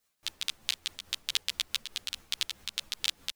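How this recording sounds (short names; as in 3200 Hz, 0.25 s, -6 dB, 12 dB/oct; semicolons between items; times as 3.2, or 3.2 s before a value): tremolo triangle 4.7 Hz, depth 55%; a shimmering, thickened sound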